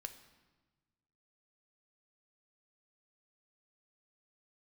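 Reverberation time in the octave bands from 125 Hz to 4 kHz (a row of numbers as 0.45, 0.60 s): 1.9, 1.7, 1.3, 1.3, 1.1, 1.0 s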